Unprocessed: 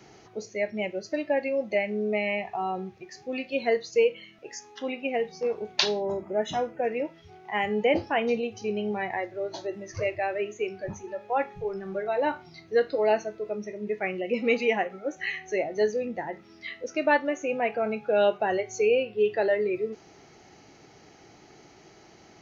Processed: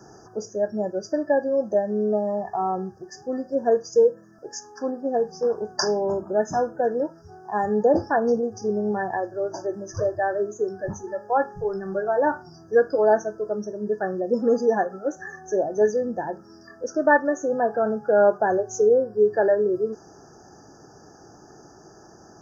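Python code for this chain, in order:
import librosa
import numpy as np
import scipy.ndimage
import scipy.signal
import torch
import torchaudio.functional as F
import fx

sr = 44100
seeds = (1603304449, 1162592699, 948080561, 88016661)

y = fx.brickwall_bandstop(x, sr, low_hz=1800.0, high_hz=4700.0)
y = y * librosa.db_to_amplitude(5.0)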